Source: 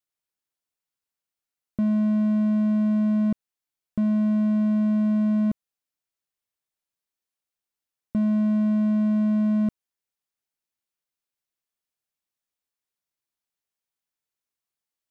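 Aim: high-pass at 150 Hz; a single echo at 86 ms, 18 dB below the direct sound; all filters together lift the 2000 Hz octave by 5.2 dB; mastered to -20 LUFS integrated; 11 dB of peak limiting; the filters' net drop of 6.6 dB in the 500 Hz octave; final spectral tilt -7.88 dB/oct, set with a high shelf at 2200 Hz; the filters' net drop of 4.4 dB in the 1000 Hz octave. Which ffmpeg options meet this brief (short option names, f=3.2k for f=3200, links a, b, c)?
-af "highpass=150,equalizer=f=500:t=o:g=-8,equalizer=f=1k:t=o:g=-6,equalizer=f=2k:t=o:g=7.5,highshelf=f=2.2k:g=5.5,alimiter=level_in=7dB:limit=-24dB:level=0:latency=1,volume=-7dB,aecho=1:1:86:0.126,volume=16dB"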